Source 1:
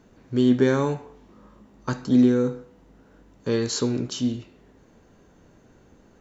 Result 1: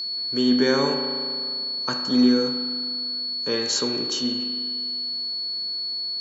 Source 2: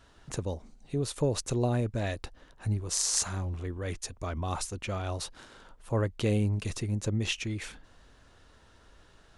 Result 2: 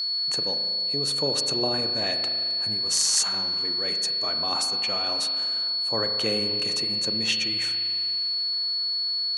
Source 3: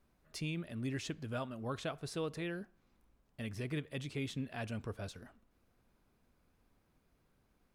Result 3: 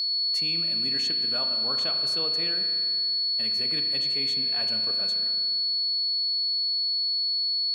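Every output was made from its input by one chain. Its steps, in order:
whistle 4.4 kHz -30 dBFS; high-pass 140 Hz 24 dB/octave; bass shelf 410 Hz -10.5 dB; spring tank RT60 2.2 s, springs 36 ms, chirp 70 ms, DRR 5.5 dB; normalise loudness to -23 LUFS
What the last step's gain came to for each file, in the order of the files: +3.5 dB, +5.5 dB, +6.0 dB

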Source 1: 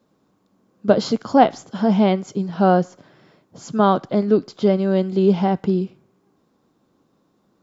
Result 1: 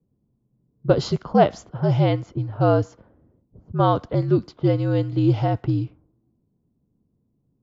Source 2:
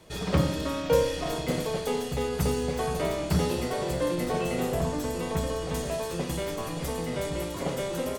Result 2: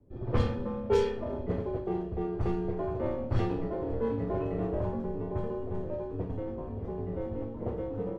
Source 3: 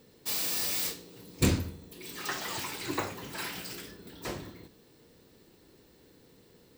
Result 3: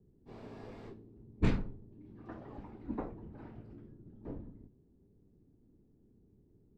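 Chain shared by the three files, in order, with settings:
level-controlled noise filter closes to 310 Hz, open at -14 dBFS; frequency shift -66 Hz; trim -2.5 dB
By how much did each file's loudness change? -2.5 LU, -4.0 LU, -9.5 LU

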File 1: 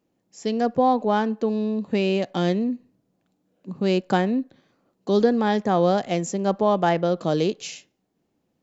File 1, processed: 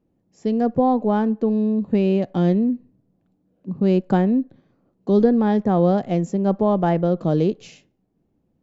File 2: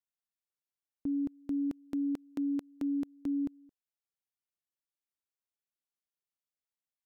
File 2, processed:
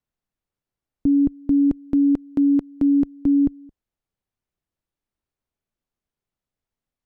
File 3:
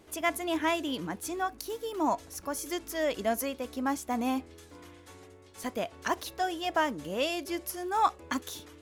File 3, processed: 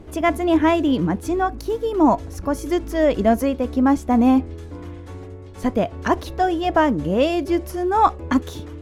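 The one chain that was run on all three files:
tilt EQ -3.5 dB/octave; normalise loudness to -20 LUFS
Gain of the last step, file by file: -2.5 dB, +8.5 dB, +9.5 dB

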